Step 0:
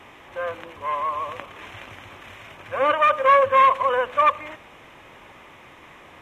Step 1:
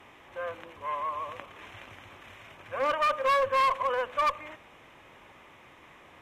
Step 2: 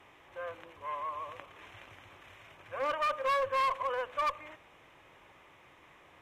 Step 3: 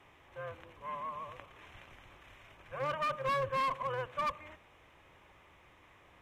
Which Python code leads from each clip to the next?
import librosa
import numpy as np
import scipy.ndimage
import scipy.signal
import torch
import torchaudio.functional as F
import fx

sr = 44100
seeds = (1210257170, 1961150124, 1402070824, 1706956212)

y1 = fx.clip_asym(x, sr, top_db=-17.0, bottom_db=-11.5)
y1 = y1 * 10.0 ** (-7.0 / 20.0)
y2 = fx.peak_eq(y1, sr, hz=230.0, db=-8.5, octaves=0.22)
y2 = y2 * 10.0 ** (-5.0 / 20.0)
y3 = fx.octave_divider(y2, sr, octaves=2, level_db=2.0)
y3 = y3 * 10.0 ** (-3.0 / 20.0)